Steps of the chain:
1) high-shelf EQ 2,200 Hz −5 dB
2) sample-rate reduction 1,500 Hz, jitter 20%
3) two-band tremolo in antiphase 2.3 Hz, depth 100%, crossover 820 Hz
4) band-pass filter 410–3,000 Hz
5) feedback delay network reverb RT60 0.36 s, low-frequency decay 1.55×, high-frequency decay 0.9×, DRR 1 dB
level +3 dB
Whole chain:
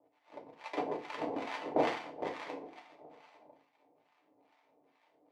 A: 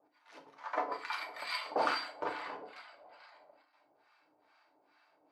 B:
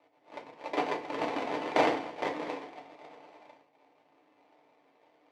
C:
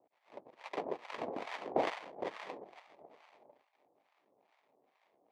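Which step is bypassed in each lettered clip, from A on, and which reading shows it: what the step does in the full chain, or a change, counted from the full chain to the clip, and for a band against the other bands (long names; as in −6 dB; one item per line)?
2, 125 Hz band −14.0 dB
3, change in integrated loudness +5.0 LU
5, 250 Hz band −3.0 dB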